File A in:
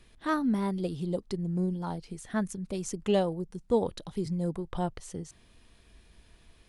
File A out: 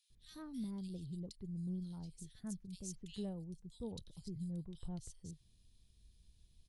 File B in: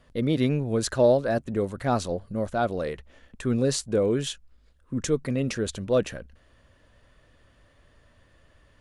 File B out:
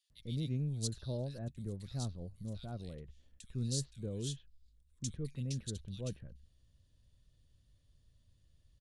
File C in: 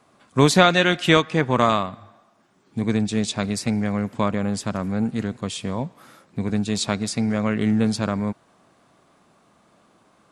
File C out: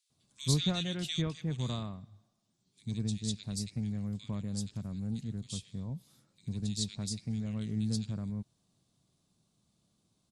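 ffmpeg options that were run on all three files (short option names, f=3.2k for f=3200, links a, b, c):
-filter_complex "[0:a]firequalizer=gain_entry='entry(130,0);entry(260,-11);entry(580,-18);entry(1300,-21);entry(3800,-2)':delay=0.05:min_phase=1,acrossover=split=2000[a][b];[a]adelay=100[c];[c][b]amix=inputs=2:normalize=0,volume=-7dB"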